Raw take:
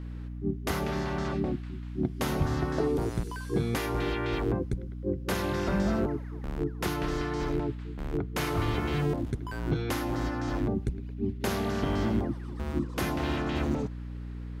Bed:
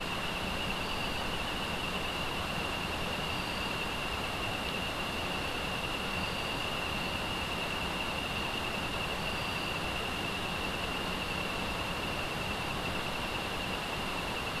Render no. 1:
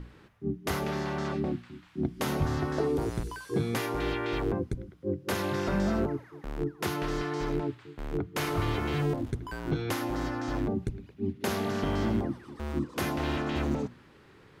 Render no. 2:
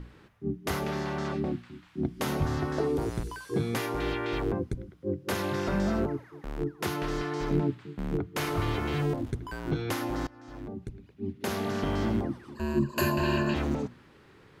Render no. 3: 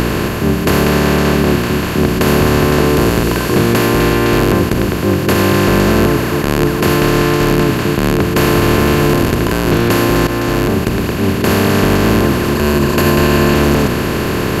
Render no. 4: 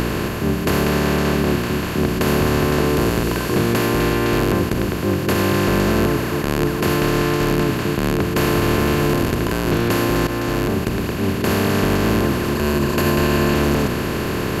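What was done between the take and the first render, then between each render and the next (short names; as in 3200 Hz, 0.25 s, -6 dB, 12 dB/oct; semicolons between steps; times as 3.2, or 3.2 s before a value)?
notches 60/120/180/240/300 Hz
7.51–8.16 bell 190 Hz +15 dB; 10.27–11.72 fade in, from -23 dB; 12.55–13.54 ripple EQ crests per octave 1.4, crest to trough 18 dB
per-bin compression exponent 0.2; maximiser +9.5 dB
gain -6 dB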